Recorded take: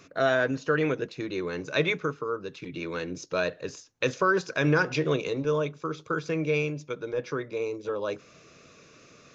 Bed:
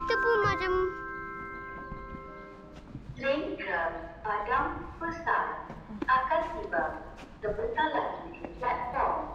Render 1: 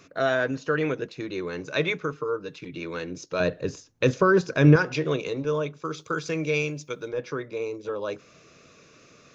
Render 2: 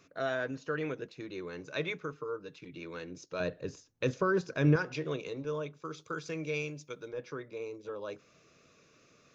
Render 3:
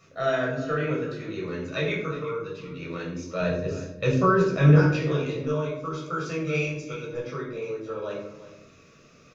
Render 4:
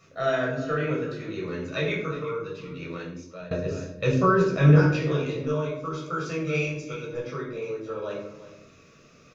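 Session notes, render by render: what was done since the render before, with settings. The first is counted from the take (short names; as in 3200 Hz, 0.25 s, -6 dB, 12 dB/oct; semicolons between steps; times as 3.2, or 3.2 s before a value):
2.12–2.59 comb 6.6 ms, depth 55%; 3.4–4.76 low shelf 430 Hz +11.5 dB; 5.84–7.08 high shelf 4200 Hz +12 dB
gain -9.5 dB
echo 0.362 s -15 dB; shoebox room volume 920 m³, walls furnished, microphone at 6.4 m
2.83–3.51 fade out, to -19.5 dB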